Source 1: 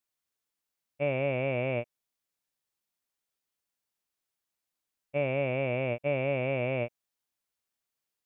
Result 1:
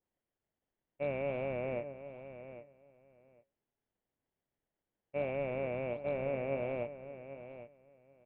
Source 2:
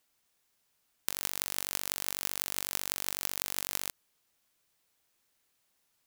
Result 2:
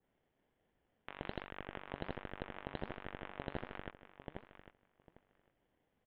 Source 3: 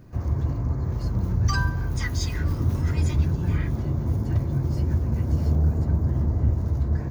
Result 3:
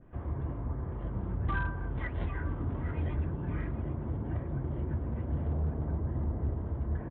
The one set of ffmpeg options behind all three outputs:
-filter_complex "[0:a]acrossover=split=2800[link_01][link_02];[link_01]equalizer=frequency=110:width_type=o:width=1.8:gain=-7.5[link_03];[link_02]acrusher=samples=35:mix=1:aa=0.000001[link_04];[link_03][link_04]amix=inputs=2:normalize=0,asplit=2[link_05][link_06];[link_06]adelay=800,lowpass=frequency=2500:poles=1,volume=-12dB,asplit=2[link_07][link_08];[link_08]adelay=800,lowpass=frequency=2500:poles=1,volume=0.16[link_09];[link_05][link_07][link_09]amix=inputs=3:normalize=0,aresample=8000,asoftclip=type=hard:threshold=-20.5dB,aresample=44100,flanger=delay=0.5:depth=6.8:regen=86:speed=1.3:shape=sinusoidal,adynamicequalizer=threshold=0.00224:dfrequency=2000:dqfactor=0.7:tfrequency=2000:tqfactor=0.7:attack=5:release=100:ratio=0.375:range=2.5:mode=cutabove:tftype=highshelf"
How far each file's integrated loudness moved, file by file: −7.5, −14.5, −10.0 LU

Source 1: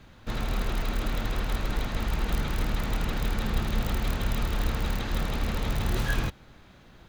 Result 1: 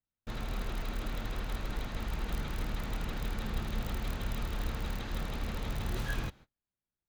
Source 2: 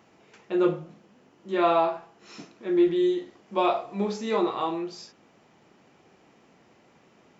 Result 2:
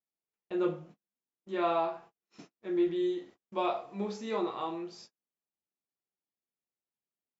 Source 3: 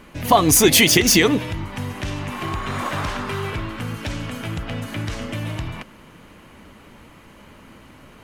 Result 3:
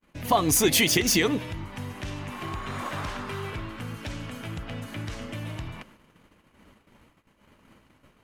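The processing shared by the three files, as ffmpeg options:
-af "agate=range=-38dB:threshold=-44dB:ratio=16:detection=peak,volume=-7.5dB"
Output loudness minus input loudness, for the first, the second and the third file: −7.5, −7.0, −7.5 LU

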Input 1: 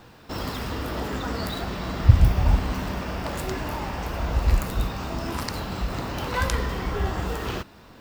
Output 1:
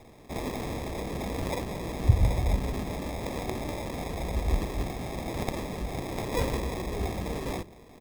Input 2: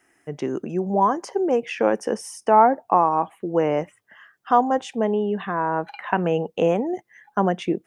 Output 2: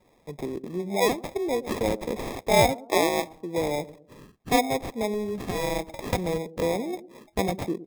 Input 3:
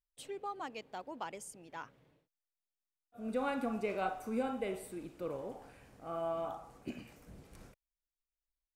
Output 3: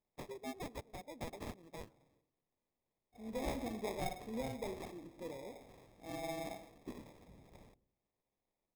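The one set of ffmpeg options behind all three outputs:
-filter_complex "[0:a]tiltshelf=frequency=1200:gain=-6,acrossover=split=580[link_01][link_02];[link_01]aecho=1:1:109|218|327|436:0.211|0.0782|0.0289|0.0107[link_03];[link_02]acrusher=samples=30:mix=1:aa=0.000001[link_04];[link_03][link_04]amix=inputs=2:normalize=0,volume=-1dB"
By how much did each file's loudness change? −5.5, −5.0, −5.0 LU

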